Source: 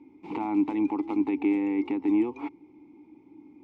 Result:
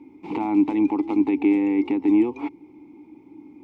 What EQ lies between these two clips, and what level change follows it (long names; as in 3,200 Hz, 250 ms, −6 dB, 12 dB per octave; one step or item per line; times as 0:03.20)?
dynamic equaliser 1,300 Hz, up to −4 dB, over −48 dBFS, Q 1.2
+6.0 dB